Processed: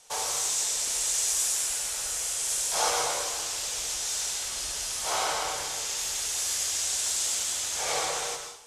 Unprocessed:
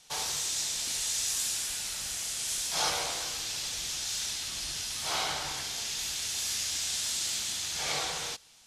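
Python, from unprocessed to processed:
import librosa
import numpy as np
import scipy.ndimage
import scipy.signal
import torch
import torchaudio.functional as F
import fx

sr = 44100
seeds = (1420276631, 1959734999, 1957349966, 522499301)

y = fx.graphic_eq(x, sr, hz=(125, 250, 500, 1000, 4000, 8000), db=(-7, -5, 8, 4, -4, 6))
y = fx.rev_plate(y, sr, seeds[0], rt60_s=0.7, hf_ratio=0.9, predelay_ms=105, drr_db=4.5)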